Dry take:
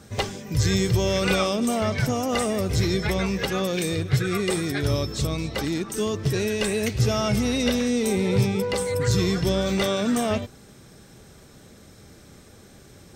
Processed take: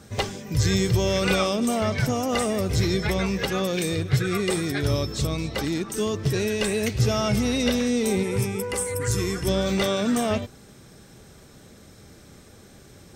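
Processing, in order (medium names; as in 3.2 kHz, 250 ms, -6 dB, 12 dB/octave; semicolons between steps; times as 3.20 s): 8.23–9.48 s: fifteen-band graphic EQ 160 Hz -10 dB, 630 Hz -8 dB, 4 kHz -10 dB, 10 kHz +10 dB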